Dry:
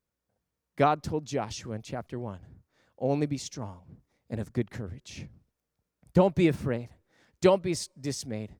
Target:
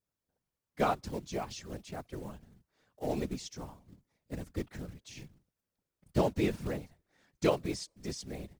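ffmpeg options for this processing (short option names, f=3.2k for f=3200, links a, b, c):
-filter_complex "[0:a]acrusher=bits=5:mode=log:mix=0:aa=0.000001,highshelf=f=2.2k:g=2,afftfilt=real='hypot(re,im)*cos(2*PI*random(0))':imag='hypot(re,im)*sin(2*PI*random(1))':win_size=512:overlap=0.75,acrossover=split=7100[a][b];[b]acompressor=threshold=-55dB:ratio=4:attack=1:release=60[c];[a][c]amix=inputs=2:normalize=0"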